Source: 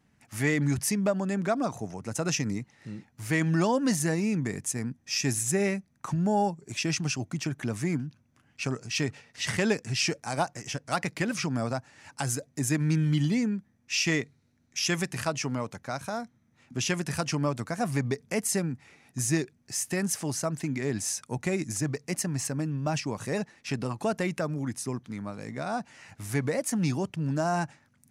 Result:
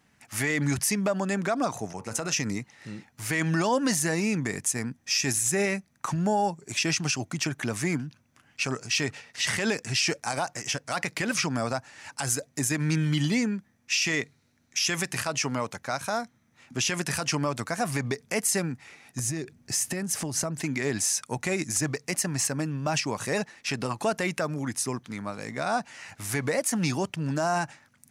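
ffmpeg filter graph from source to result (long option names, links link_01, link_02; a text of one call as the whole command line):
ffmpeg -i in.wav -filter_complex "[0:a]asettb=1/sr,asplit=3[link_01][link_02][link_03];[link_01]atrim=end=1.934[link_04];[link_02]atrim=start=1.93:end=2.33,asetpts=PTS-STARTPTS,afade=type=in:duration=0.004:curve=qsin,afade=type=out:start_time=0.396:duration=0.004:curve=qsin,bandreject=frequency=77.24:width_type=h:width=4,bandreject=frequency=154.48:width_type=h:width=4,bandreject=frequency=231.72:width_type=h:width=4,bandreject=frequency=308.96:width_type=h:width=4,bandreject=frequency=386.2:width_type=h:width=4,bandreject=frequency=463.44:width_type=h:width=4,bandreject=frequency=540.68:width_type=h:width=4,bandreject=frequency=617.92:width_type=h:width=4,bandreject=frequency=695.16:width_type=h:width=4,bandreject=frequency=772.4:width_type=h:width=4,bandreject=frequency=849.64:width_type=h:width=4,bandreject=frequency=926.88:width_type=h:width=4,bandreject=frequency=1004.12:width_type=h:width=4,bandreject=frequency=1081.36:width_type=h:width=4,bandreject=frequency=1158.6:width_type=h:width=4,bandreject=frequency=1235.84:width_type=h:width=4,bandreject=frequency=1313.08:width_type=h:width=4,bandreject=frequency=1390.32:width_type=h:width=4,bandreject=frequency=1467.56:width_type=h:width=4,bandreject=frequency=1544.8:width_type=h:width=4,bandreject=frequency=1622.04:width_type=h:width=4,bandreject=frequency=1699.28:width_type=h:width=4,bandreject=frequency=1776.52:width_type=h:width=4,bandreject=frequency=1853.76:width_type=h:width=4,bandreject=frequency=1931:width_type=h:width=4,bandreject=frequency=2008.24:width_type=h:width=4,bandreject=frequency=2085.48:width_type=h:width=4,bandreject=frequency=2162.72:width_type=h:width=4,bandreject=frequency=2239.96:width_type=h:width=4,bandreject=frequency=2317.2:width_type=h:width=4,bandreject=frequency=2394.44:width_type=h:width=4,bandreject=frequency=2471.68:width_type=h:width=4,bandreject=frequency=2548.92:width_type=h:width=4,bandreject=frequency=2626.16:width_type=h:width=4,bandreject=frequency=2703.4:width_type=h:width=4,bandreject=frequency=2780.64:width_type=h:width=4,agate=range=-33dB:threshold=-42dB:ratio=3:release=100:detection=peak,acompressor=threshold=-30dB:ratio=5:attack=3.2:release=140:knee=1:detection=peak[link_05];[link_03]atrim=start=2.326[link_06];[link_04][link_05]acrossfade=duration=0.004:curve1=hsin:curve2=qsin[link_07];[link_07][link_06]acrossfade=duration=0.004:curve1=qsin:curve2=hsin,asettb=1/sr,asplit=3[link_08][link_09][link_10];[link_08]atrim=end=19.194[link_11];[link_09]atrim=start=19.19:end=20.62,asetpts=PTS-STARTPTS,afade=type=in:duration=0.004:curve=qsin,afade=type=out:start_time=1.426:duration=0.004:curve=qsin,lowshelf=frequency=460:gain=10.5,acompressor=threshold=-28dB:ratio=20:attack=3.2:release=140:knee=1:detection=peak[link_12];[link_10]atrim=start=20.616[link_13];[link_11][link_12]acrossfade=duration=0.004:curve1=hsin:curve2=qsin[link_14];[link_14][link_13]acrossfade=duration=0.004:curve1=qsin:curve2=hsin,lowshelf=frequency=470:gain=-9,alimiter=limit=-23dB:level=0:latency=1:release=45,volume=7.5dB" out.wav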